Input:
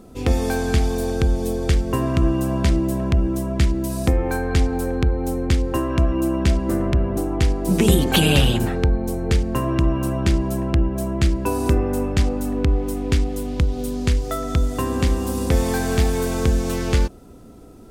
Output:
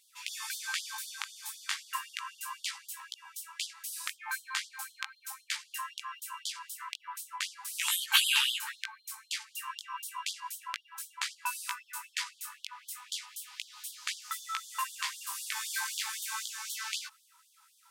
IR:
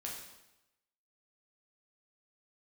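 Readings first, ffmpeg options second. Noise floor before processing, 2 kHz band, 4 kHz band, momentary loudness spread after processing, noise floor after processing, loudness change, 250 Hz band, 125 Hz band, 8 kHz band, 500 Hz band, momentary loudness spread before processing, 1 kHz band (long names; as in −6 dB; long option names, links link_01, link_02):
−42 dBFS, −5.0 dB, −3.0 dB, 10 LU, −66 dBFS, −14.0 dB, below −40 dB, below −40 dB, −3.0 dB, below −40 dB, 4 LU, −10.5 dB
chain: -af "flanger=delay=15.5:depth=4.8:speed=0.35,afftfilt=real='re*gte(b*sr/1024,810*pow(3100/810,0.5+0.5*sin(2*PI*3.9*pts/sr)))':imag='im*gte(b*sr/1024,810*pow(3100/810,0.5+0.5*sin(2*PI*3.9*pts/sr)))':win_size=1024:overlap=0.75"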